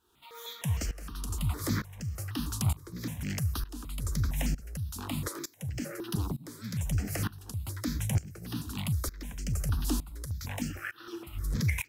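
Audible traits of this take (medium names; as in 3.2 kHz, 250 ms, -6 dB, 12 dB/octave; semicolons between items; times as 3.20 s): a quantiser's noise floor 12-bit, dither none; tremolo saw up 1.1 Hz, depth 90%; notches that jump at a steady rate 6.5 Hz 570–3700 Hz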